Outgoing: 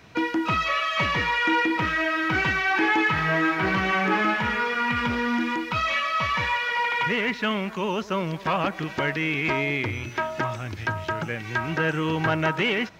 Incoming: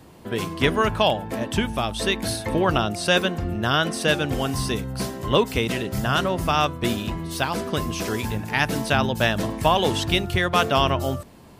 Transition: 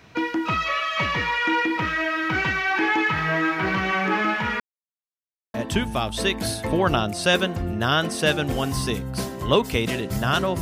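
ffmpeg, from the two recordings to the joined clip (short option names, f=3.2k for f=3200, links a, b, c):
-filter_complex "[0:a]apad=whole_dur=10.61,atrim=end=10.61,asplit=2[a][b];[a]atrim=end=4.6,asetpts=PTS-STARTPTS,afade=t=out:st=4.596:d=0.004:c=hsin[c];[b]atrim=start=4.6:end=5.54,asetpts=PTS-STARTPTS,volume=0[d];[1:a]atrim=start=1.36:end=6.43,asetpts=PTS-STARTPTS,afade=t=in:d=0.004:c=hsin[e];[c][d][e]concat=n=3:v=0:a=1"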